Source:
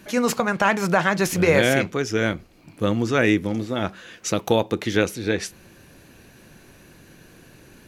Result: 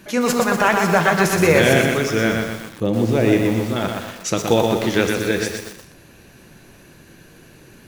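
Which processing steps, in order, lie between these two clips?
0:02.83–0:03.33: drawn EQ curve 800 Hz 0 dB, 1,300 Hz −14 dB, 2,400 Hz −7 dB
reverb whose tail is shaped and stops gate 480 ms falling, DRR 7.5 dB
feedback echo at a low word length 122 ms, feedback 55%, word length 6 bits, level −4 dB
level +2 dB

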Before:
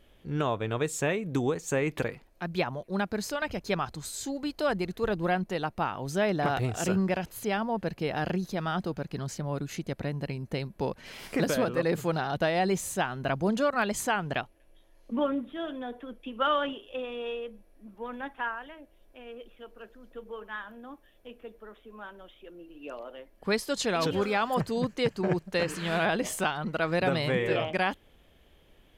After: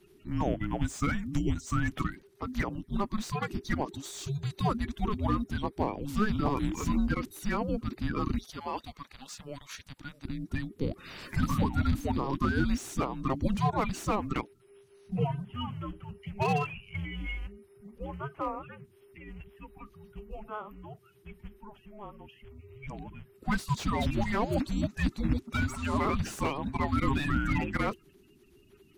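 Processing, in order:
spectral magnitudes quantised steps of 30 dB
0:08.38–0:10.25: high-pass filter 950 Hz 12 dB per octave
frequency shifter −420 Hz
slew-rate limiting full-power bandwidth 58 Hz

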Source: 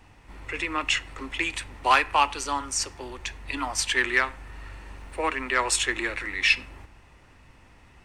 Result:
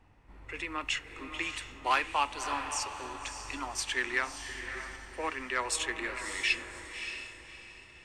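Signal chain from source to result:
feedback delay with all-pass diffusion 601 ms, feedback 42%, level −8 dB
one half of a high-frequency compander decoder only
level −8 dB

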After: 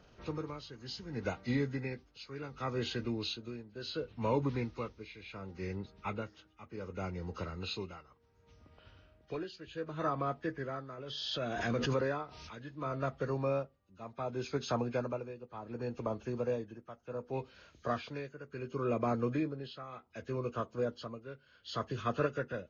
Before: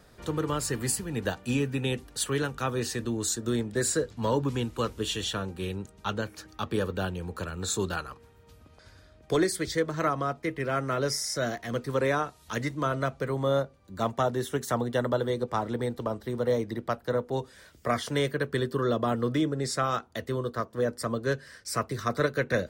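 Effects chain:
hearing-aid frequency compression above 1,200 Hz 1.5 to 1
amplitude tremolo 0.68 Hz, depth 81%
0:10.98–0:12.65: background raised ahead of every attack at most 26 dB per second
level −4.5 dB

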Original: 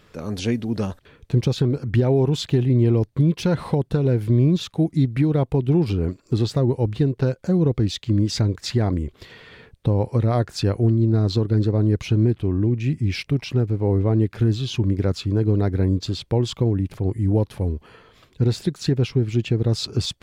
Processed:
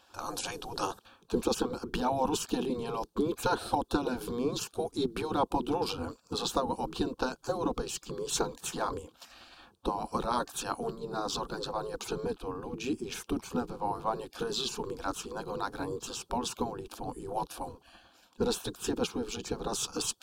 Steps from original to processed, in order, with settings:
phaser with its sweep stopped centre 400 Hz, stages 8
gate on every frequency bin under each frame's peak −15 dB weak
one half of a high-frequency compander decoder only
level +7 dB

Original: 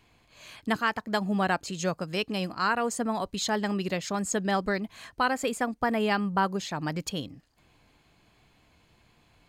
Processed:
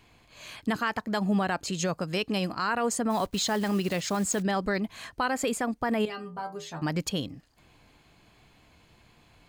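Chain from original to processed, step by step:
0:03.10–0:04.43: one scale factor per block 5 bits
brickwall limiter −21 dBFS, peak gain reduction 7.5 dB
0:06.05–0:06.82: stiff-string resonator 80 Hz, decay 0.31 s, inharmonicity 0.002
level +3.5 dB

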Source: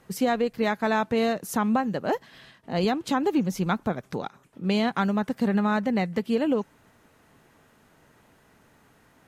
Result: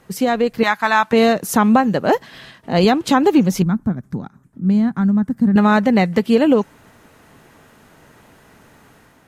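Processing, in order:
0:00.63–0:01.13: low shelf with overshoot 700 Hz −11 dB, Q 1.5
automatic gain control gain up to 5 dB
0:03.62–0:05.56: drawn EQ curve 230 Hz 0 dB, 480 Hz −17 dB, 1,700 Hz −13 dB, 2,700 Hz −25 dB, 8,500 Hz −14 dB
level +5.5 dB

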